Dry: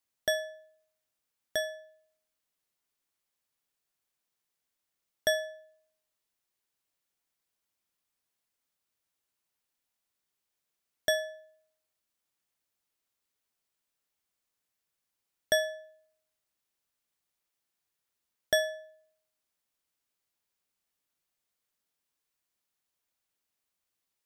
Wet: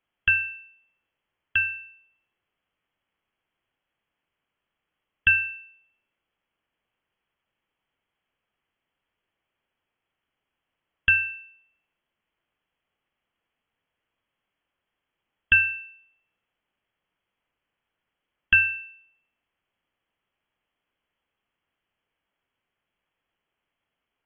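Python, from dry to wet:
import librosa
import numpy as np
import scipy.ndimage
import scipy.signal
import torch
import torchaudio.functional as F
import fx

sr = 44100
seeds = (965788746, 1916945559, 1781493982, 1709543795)

y = fx.env_lowpass_down(x, sr, base_hz=2600.0, full_db=-35.0)
y = fx.freq_invert(y, sr, carrier_hz=3300)
y = y * librosa.db_to_amplitude(9.0)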